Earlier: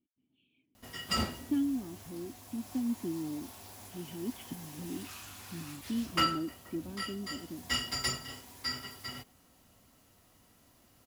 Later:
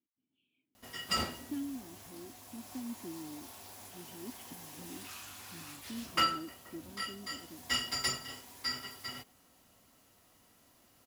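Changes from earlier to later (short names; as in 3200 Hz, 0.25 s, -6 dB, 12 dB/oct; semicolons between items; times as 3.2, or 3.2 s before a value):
speech -6.0 dB; master: add low shelf 200 Hz -7.5 dB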